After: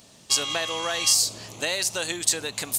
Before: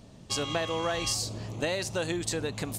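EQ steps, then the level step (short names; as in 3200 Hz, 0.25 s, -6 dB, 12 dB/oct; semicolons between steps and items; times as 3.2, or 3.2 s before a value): tilt +3.5 dB/oct; +2.0 dB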